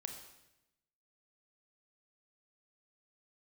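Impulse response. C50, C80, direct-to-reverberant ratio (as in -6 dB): 6.5 dB, 8.5 dB, 4.0 dB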